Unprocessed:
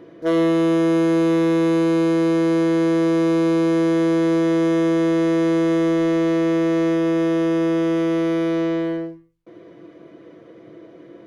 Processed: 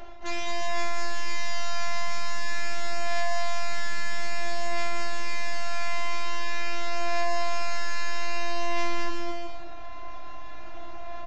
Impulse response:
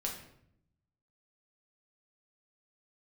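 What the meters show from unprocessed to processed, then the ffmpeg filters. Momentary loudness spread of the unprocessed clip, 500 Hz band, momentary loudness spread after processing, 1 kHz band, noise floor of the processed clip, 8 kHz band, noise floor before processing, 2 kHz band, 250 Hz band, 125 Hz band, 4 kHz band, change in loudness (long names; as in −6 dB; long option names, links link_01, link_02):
3 LU, −15.5 dB, 13 LU, −1.5 dB, −30 dBFS, can't be measured, −45 dBFS, +0.5 dB, −28.0 dB, −14.5 dB, +1.0 dB, −13.0 dB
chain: -af "highshelf=frequency=2300:gain=6,bandreject=frequency=50:width_type=h:width=6,bandreject=frequency=100:width_type=h:width=6,bandreject=frequency=150:width_type=h:width=6,bandreject=frequency=200:width_type=h:width=6,bandreject=frequency=250:width_type=h:width=6,bandreject=frequency=300:width_type=h:width=6,bandreject=frequency=350:width_type=h:width=6,bandreject=frequency=400:width_type=h:width=6,areverse,acompressor=threshold=-27dB:ratio=16,areverse,aeval=exprs='0.0668*(cos(1*acos(clip(val(0)/0.0668,-1,1)))-cos(1*PI/2))+0.0335*(cos(7*acos(clip(val(0)/0.0668,-1,1)))-cos(7*PI/2))+0.00168*(cos(8*acos(clip(val(0)/0.0668,-1,1)))-cos(8*PI/2))':channel_layout=same,afftfilt=real='hypot(re,im)*cos(PI*b)':imag='0':win_size=512:overlap=0.75,aeval=exprs='abs(val(0))':channel_layout=same,flanger=delay=5.1:depth=1.7:regen=45:speed=0.25:shape=triangular,aecho=1:1:210|367.5|485.6|574.2|640.7:0.631|0.398|0.251|0.158|0.1,aresample=16000,aresample=44100,volume=5.5dB"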